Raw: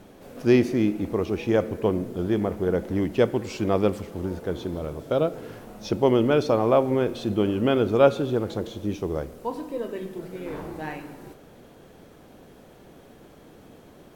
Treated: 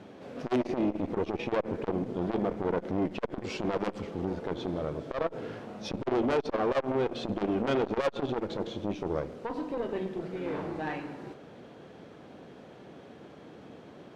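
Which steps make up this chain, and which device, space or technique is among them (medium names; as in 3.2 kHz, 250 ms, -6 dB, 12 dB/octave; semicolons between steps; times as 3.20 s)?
valve radio (band-pass 110–4400 Hz; valve stage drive 23 dB, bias 0.5; transformer saturation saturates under 410 Hz); trim +3 dB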